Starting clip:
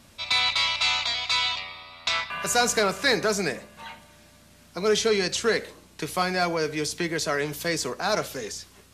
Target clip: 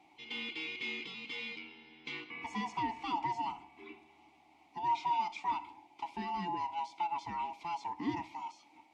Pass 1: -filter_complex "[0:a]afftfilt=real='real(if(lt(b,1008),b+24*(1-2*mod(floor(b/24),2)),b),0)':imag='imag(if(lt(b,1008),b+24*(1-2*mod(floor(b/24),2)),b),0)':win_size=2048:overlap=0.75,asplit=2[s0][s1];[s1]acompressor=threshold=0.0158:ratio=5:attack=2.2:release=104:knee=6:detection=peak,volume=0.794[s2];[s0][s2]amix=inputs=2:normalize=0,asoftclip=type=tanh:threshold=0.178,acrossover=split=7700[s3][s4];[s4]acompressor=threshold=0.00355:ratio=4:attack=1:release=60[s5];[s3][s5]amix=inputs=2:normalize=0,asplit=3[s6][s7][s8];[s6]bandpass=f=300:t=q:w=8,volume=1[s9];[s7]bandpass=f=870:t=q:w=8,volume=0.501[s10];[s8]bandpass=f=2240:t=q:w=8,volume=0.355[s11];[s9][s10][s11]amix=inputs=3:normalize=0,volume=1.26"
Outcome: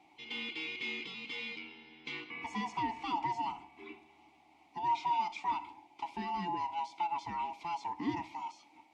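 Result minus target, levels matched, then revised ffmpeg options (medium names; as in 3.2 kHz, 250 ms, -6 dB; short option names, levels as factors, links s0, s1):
compression: peak gain reduction -6.5 dB
-filter_complex "[0:a]afftfilt=real='real(if(lt(b,1008),b+24*(1-2*mod(floor(b/24),2)),b),0)':imag='imag(if(lt(b,1008),b+24*(1-2*mod(floor(b/24),2)),b),0)':win_size=2048:overlap=0.75,asplit=2[s0][s1];[s1]acompressor=threshold=0.00631:ratio=5:attack=2.2:release=104:knee=6:detection=peak,volume=0.794[s2];[s0][s2]amix=inputs=2:normalize=0,asoftclip=type=tanh:threshold=0.178,acrossover=split=7700[s3][s4];[s4]acompressor=threshold=0.00355:ratio=4:attack=1:release=60[s5];[s3][s5]amix=inputs=2:normalize=0,asplit=3[s6][s7][s8];[s6]bandpass=f=300:t=q:w=8,volume=1[s9];[s7]bandpass=f=870:t=q:w=8,volume=0.501[s10];[s8]bandpass=f=2240:t=q:w=8,volume=0.355[s11];[s9][s10][s11]amix=inputs=3:normalize=0,volume=1.26"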